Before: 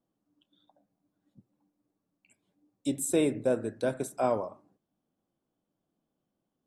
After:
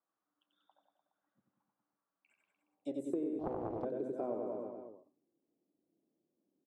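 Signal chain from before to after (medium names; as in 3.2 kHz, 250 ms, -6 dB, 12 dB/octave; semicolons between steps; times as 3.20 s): reverse bouncing-ball echo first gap 90 ms, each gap 1.1×, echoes 5; band-pass sweep 1.3 kHz -> 340 Hz, 2.60–3.17 s; compression 16:1, threshold -36 dBFS, peak gain reduction 14 dB; de-hum 127.8 Hz, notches 3; 3.39–3.85 s: loudspeaker Doppler distortion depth 0.68 ms; trim +3 dB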